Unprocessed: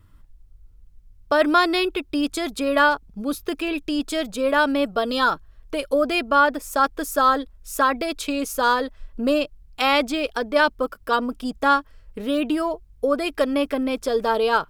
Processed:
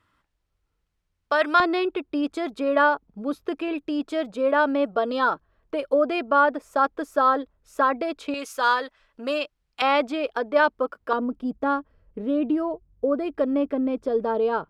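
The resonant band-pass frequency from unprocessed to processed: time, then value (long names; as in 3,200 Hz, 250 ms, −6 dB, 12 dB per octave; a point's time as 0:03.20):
resonant band-pass, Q 0.52
1,700 Hz
from 0:01.60 600 Hz
from 0:08.34 1,800 Hz
from 0:09.82 730 Hz
from 0:11.13 260 Hz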